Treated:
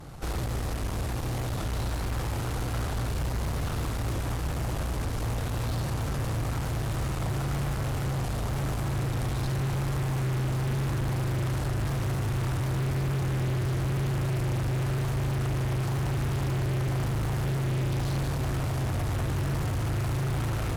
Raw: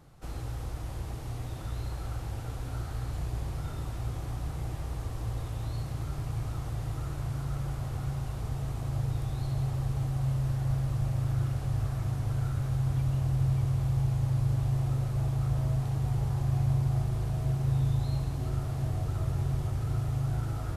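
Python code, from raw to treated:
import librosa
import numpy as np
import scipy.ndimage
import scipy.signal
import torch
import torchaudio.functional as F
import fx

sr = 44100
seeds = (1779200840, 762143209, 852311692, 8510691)

y = np.clip(10.0 ** (31.0 / 20.0) * x, -1.0, 1.0) / 10.0 ** (31.0 / 20.0)
y = fx.vibrato(y, sr, rate_hz=0.94, depth_cents=38.0)
y = fx.cheby_harmonics(y, sr, harmonics=(5, 6), levels_db=(-11, -13), full_scale_db=-30.5)
y = y * 10.0 ** (5.5 / 20.0)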